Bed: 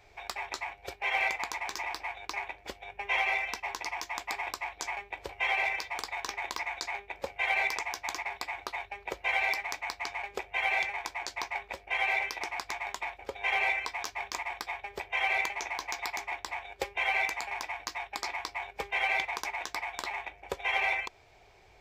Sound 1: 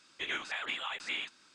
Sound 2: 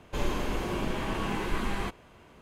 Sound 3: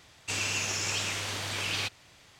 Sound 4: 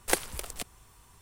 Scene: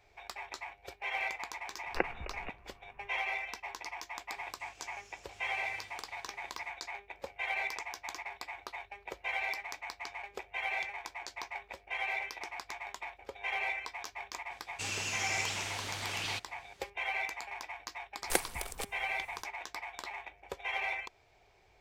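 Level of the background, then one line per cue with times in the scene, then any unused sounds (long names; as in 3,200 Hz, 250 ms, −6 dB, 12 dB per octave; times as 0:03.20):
bed −6.5 dB
0:01.87: mix in 4 −3 dB + linear-phase brick-wall low-pass 2,900 Hz
0:04.32: mix in 3 −16.5 dB + compressor whose output falls as the input rises −42 dBFS
0:14.51: mix in 3 −6 dB
0:18.22: mix in 4 −3.5 dB
not used: 1, 2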